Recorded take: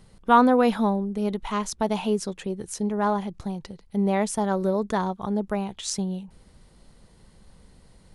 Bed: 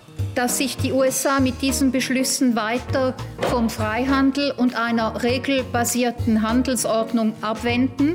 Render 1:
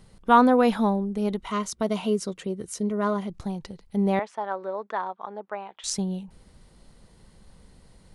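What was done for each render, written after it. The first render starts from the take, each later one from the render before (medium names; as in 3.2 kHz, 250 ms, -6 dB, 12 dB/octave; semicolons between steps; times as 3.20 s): 1.41–3.30 s: comb of notches 840 Hz; 4.19–5.84 s: band-pass 680–2100 Hz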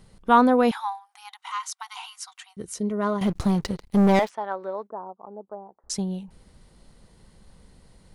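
0.71–2.57 s: brick-wall FIR high-pass 720 Hz; 3.21–4.30 s: waveshaping leveller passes 3; 4.87–5.90 s: Gaussian low-pass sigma 10 samples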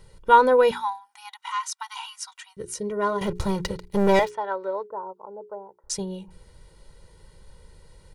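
hum notches 60/120/180/240/300/360/420 Hz; comb 2.1 ms, depth 73%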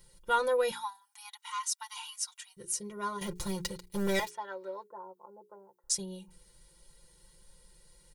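pre-emphasis filter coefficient 0.8; comb 5.7 ms, depth 75%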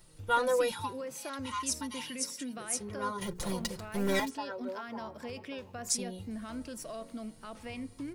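add bed -21.5 dB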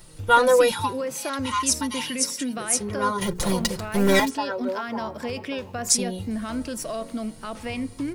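trim +11 dB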